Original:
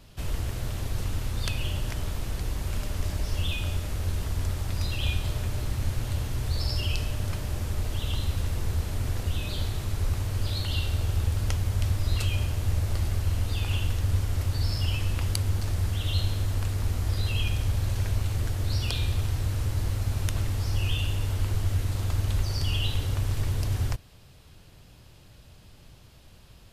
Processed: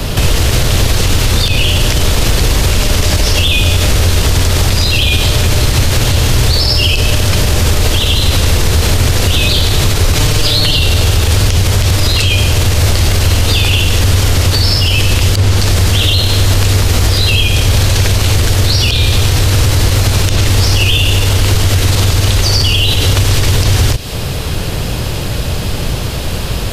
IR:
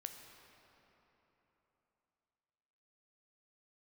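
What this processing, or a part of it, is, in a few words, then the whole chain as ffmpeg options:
mastering chain: -filter_complex "[0:a]asettb=1/sr,asplit=3[link_01][link_02][link_03];[link_01]atrim=end=10.154[link_04];[link_02]atrim=start=10.15:end=10.79,asetpts=PTS-STARTPTS,afade=type=in:duration=0.004:curve=qsin,afade=type=out:start_time=0.636:duration=0.004:curve=qsin,aecho=1:1:6.6:0.98,atrim=end_sample=28224[link_05];[link_03]atrim=start=10.786[link_06];[link_04][link_05]acrossfade=duration=0.004:curve1=hsin:curve2=qsin[link_07];[link_07][link_06]acrossfade=duration=0.004:curve1=qsin:curve2=hsin,equalizer=frequency=460:width_type=o:width=0.57:gain=4,acrossover=split=180|810|2500|7000[link_08][link_09][link_10][link_11][link_12];[link_08]acompressor=threshold=-38dB:ratio=4[link_13];[link_09]acompressor=threshold=-50dB:ratio=4[link_14];[link_10]acompressor=threshold=-55dB:ratio=4[link_15];[link_11]acompressor=threshold=-39dB:ratio=4[link_16];[link_12]acompressor=threshold=-55dB:ratio=4[link_17];[link_13][link_14][link_15][link_16][link_17]amix=inputs=5:normalize=0,acompressor=threshold=-38dB:ratio=3,asoftclip=type=tanh:threshold=-25.5dB,alimiter=level_in=36dB:limit=-1dB:release=50:level=0:latency=1,volume=-1dB"

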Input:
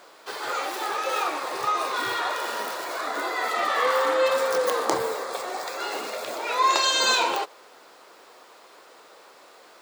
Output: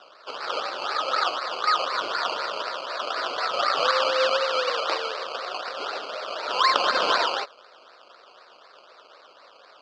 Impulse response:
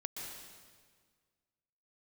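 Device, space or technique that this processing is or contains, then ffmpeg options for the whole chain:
circuit-bent sampling toy: -filter_complex "[0:a]acrusher=samples=19:mix=1:aa=0.000001:lfo=1:lforange=11.4:lforate=4,highpass=560,equalizer=frequency=580:width_type=q:width=4:gain=4,equalizer=frequency=840:width_type=q:width=4:gain=-5,equalizer=frequency=1300:width_type=q:width=4:gain=6,equalizer=frequency=2000:width_type=q:width=4:gain=-5,equalizer=frequency=3000:width_type=q:width=4:gain=5,equalizer=frequency=4600:width_type=q:width=4:gain=8,lowpass=frequency=5000:width=0.5412,lowpass=frequency=5000:width=1.3066,asettb=1/sr,asplit=3[link_01][link_02][link_03];[link_01]atrim=end=4.444[link_04];[link_02]atrim=start=4.44:end=5.21,asetpts=PTS-STARTPTS,afade=type=in:duration=0.004:curve=qsin,afade=type=out:start_time=0.766:duration=0.004:curve=qsin,highpass=frequency=280:poles=1[link_05];[link_03]atrim=start=5.206[link_06];[link_04][link_05]acrossfade=duration=0.004:curve1=hsin:curve2=qsin[link_07];[link_07][link_06]acrossfade=duration=0.004:curve1=qsin:curve2=hsin"

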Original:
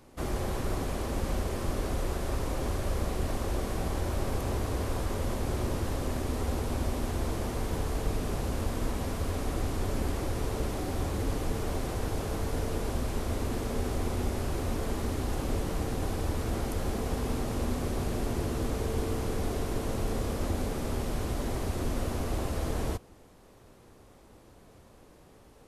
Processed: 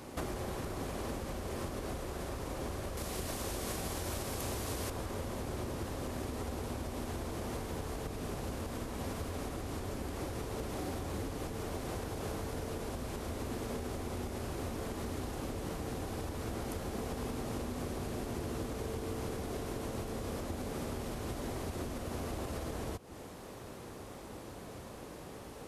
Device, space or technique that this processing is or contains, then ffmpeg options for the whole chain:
serial compression, leveller first: -filter_complex "[0:a]acompressor=threshold=-39dB:ratio=1.5,acompressor=threshold=-43dB:ratio=6,highpass=frequency=84:poles=1,asettb=1/sr,asplit=3[link_01][link_02][link_03];[link_01]atrim=end=2.974[link_04];[link_02]atrim=start=2.97:end=4.9,asetpts=PTS-STARTPTS,afade=type=in:duration=0.004:curve=qsin,afade=type=out:start_time=1.926:duration=0.004:curve=qsin,highshelf=frequency=2800:gain=10[link_05];[link_03]atrim=start=4.896[link_06];[link_04][link_05]acrossfade=duration=0.004:curve1=hsin:curve2=qsin[link_07];[link_07][link_06]acrossfade=duration=0.004:curve1=qsin:curve2=hsin,volume=9.5dB"

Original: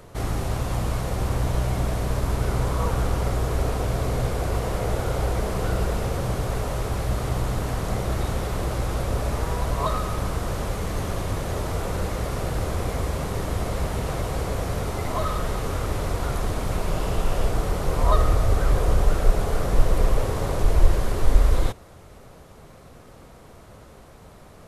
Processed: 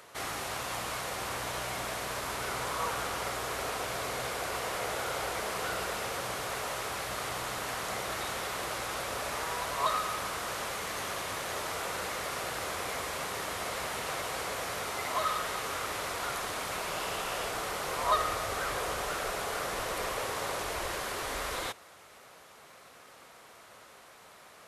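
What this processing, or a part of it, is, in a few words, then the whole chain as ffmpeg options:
filter by subtraction: -filter_complex "[0:a]asplit=2[link_01][link_02];[link_02]lowpass=1900,volume=-1[link_03];[link_01][link_03]amix=inputs=2:normalize=0"

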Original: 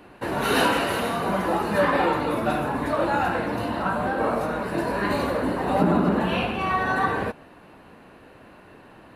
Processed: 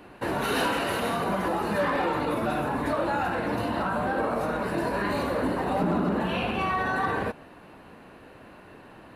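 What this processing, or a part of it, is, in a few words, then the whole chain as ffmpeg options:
clipper into limiter: -af "asoftclip=type=hard:threshold=-13.5dB,alimiter=limit=-18.5dB:level=0:latency=1:release=67"

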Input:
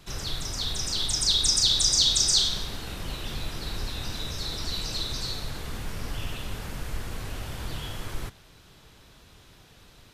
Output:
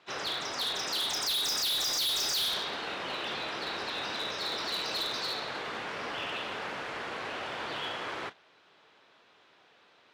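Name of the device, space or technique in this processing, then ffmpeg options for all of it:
walkie-talkie: -af "highpass=470,lowpass=2900,asoftclip=type=hard:threshold=-35dB,agate=range=-9dB:threshold=-48dB:ratio=16:detection=peak,volume=7dB"

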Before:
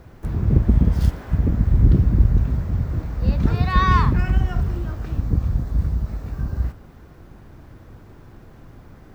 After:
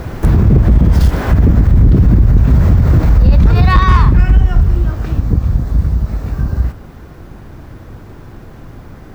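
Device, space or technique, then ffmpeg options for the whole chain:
loud club master: -filter_complex "[0:a]asettb=1/sr,asplit=3[link_01][link_02][link_03];[link_01]atrim=end=3.094[link_04];[link_02]atrim=start=3.09:end=4.9,asetpts=PTS-STARTPTS,afade=type=in:duration=0.004:curve=qsin,afade=type=out:start_time=1.806:duration=0.004:curve=qsin,lowshelf=frequency=69:gain=10.5[link_05];[link_03]atrim=start=4.896[link_06];[link_04][link_05]acrossfade=duration=0.004:curve1=hsin:curve2=qsin[link_07];[link_07][link_06]acrossfade=duration=0.004:curve1=qsin:curve2=hsin,acompressor=threshold=-23dB:ratio=1.5,asoftclip=type=hard:threshold=-12.5dB,alimiter=level_in=21.5dB:limit=-1dB:release=50:level=0:latency=1,volume=-1dB"

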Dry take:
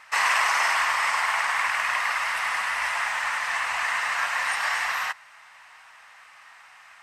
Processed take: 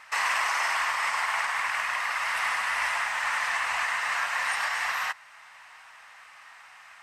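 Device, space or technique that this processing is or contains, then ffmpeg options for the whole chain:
clipper into limiter: -af "asoftclip=type=hard:threshold=-13dB,alimiter=limit=-17.5dB:level=0:latency=1:release=340"

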